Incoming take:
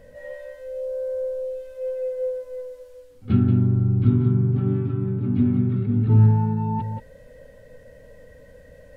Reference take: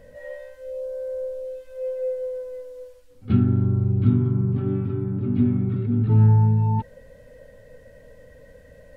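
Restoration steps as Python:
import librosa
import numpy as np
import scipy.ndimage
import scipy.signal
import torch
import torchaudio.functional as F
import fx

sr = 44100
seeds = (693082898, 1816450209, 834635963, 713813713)

y = fx.fix_echo_inverse(x, sr, delay_ms=180, level_db=-8.0)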